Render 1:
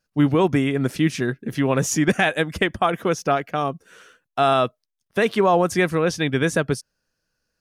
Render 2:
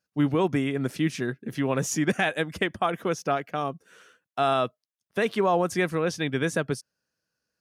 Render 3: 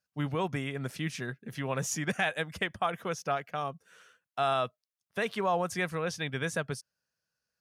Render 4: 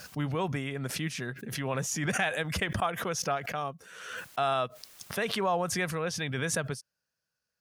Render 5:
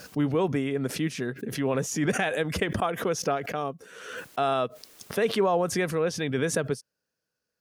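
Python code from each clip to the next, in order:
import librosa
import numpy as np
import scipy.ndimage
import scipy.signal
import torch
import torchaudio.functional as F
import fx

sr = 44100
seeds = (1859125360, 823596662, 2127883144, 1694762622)

y1 = scipy.signal.sosfilt(scipy.signal.butter(2, 96.0, 'highpass', fs=sr, output='sos'), x)
y1 = y1 * librosa.db_to_amplitude(-5.5)
y2 = fx.peak_eq(y1, sr, hz=310.0, db=-9.5, octaves=1.0)
y2 = y2 * librosa.db_to_amplitude(-3.5)
y3 = fx.pre_swell(y2, sr, db_per_s=46.0)
y4 = fx.small_body(y3, sr, hz=(290.0, 420.0), ring_ms=20, db=9)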